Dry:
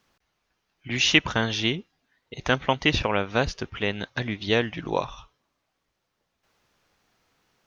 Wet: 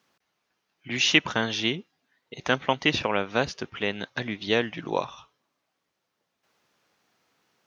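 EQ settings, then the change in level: HPF 150 Hz 12 dB/oct; -1.0 dB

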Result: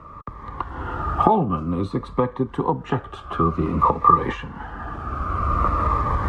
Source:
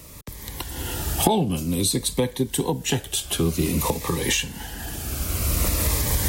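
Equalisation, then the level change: synth low-pass 1200 Hz, resonance Q 14; 0.0 dB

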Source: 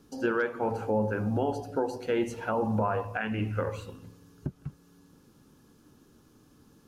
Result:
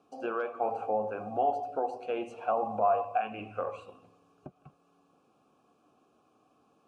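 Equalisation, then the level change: vowel filter a; low shelf 470 Hz +4 dB; bell 8600 Hz +9.5 dB 0.65 oct; +8.5 dB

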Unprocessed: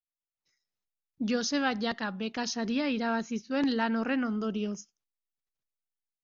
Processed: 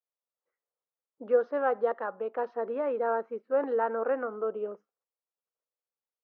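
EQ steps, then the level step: resonant high-pass 490 Hz, resonance Q 4.7; ladder low-pass 1500 Hz, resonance 40%; +4.0 dB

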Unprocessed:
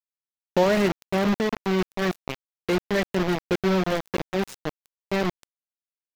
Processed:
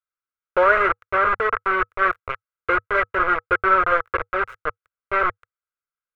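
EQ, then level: EQ curve 100 Hz 0 dB, 200 Hz -30 dB, 480 Hz -1 dB, 820 Hz -12 dB, 1300 Hz +10 dB, 2000 Hz +1 dB, 4900 Hz -25 dB; dynamic EQ 1200 Hz, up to +5 dB, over -37 dBFS, Q 0.82; Butterworth band-stop 1800 Hz, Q 7.9; +5.0 dB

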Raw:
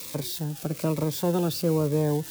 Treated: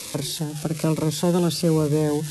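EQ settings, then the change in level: notches 50/100/150 Hz; dynamic EQ 650 Hz, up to -4 dB, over -36 dBFS, Q 0.83; brick-wall FIR low-pass 12000 Hz; +6.0 dB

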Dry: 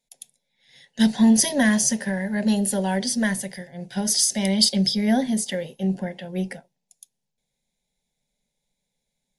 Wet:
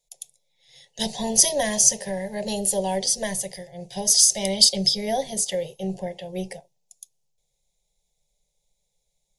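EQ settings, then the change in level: low shelf 78 Hz +7 dB; bell 6600 Hz +4.5 dB 0.63 oct; fixed phaser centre 590 Hz, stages 4; +2.5 dB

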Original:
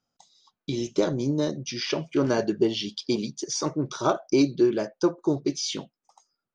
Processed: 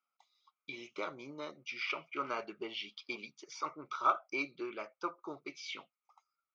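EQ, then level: double band-pass 1700 Hz, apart 0.8 oct; air absorption 53 m; +4.0 dB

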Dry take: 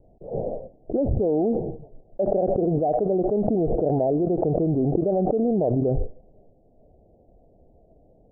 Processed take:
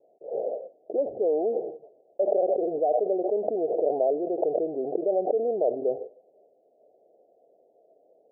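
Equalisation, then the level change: Butterworth band-pass 550 Hz, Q 1.5; 0.0 dB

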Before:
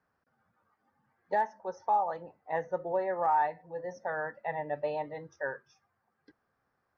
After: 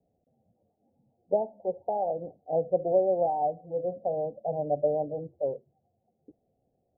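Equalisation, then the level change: Chebyshev low-pass 730 Hz, order 6; +8.0 dB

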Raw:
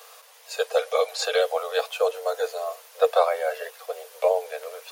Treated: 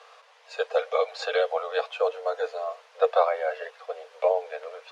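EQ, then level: LPF 2500 Hz 6 dB/oct; air absorption 92 m; low shelf 330 Hz -10.5 dB; +1.5 dB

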